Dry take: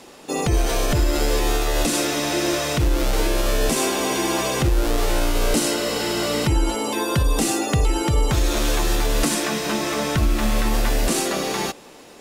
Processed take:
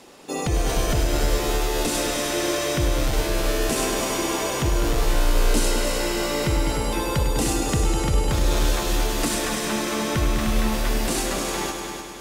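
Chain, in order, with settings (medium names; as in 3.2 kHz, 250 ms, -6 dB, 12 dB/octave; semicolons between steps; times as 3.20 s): multi-head delay 101 ms, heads all three, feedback 58%, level -10.5 dB; trim -3.5 dB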